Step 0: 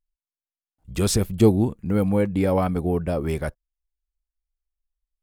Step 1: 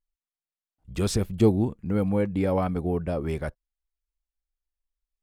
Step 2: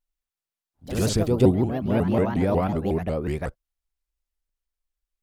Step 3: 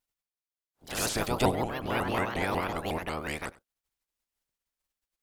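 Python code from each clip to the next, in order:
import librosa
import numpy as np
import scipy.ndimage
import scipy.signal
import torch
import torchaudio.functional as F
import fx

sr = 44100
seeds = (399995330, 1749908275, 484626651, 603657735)

y1 = fx.high_shelf(x, sr, hz=8400.0, db=-10.0)
y1 = y1 * 10.0 ** (-3.5 / 20.0)
y2 = fx.echo_pitch(y1, sr, ms=95, semitones=3, count=2, db_per_echo=-6.0)
y2 = fx.vibrato_shape(y2, sr, shape='saw_up', rate_hz=5.5, depth_cents=250.0)
y2 = y2 * 10.0 ** (1.5 / 20.0)
y3 = fx.spec_clip(y2, sr, under_db=24)
y3 = y3 + 10.0 ** (-22.0 / 20.0) * np.pad(y3, (int(95 * sr / 1000.0), 0))[:len(y3)]
y3 = y3 * 10.0 ** (-7.5 / 20.0)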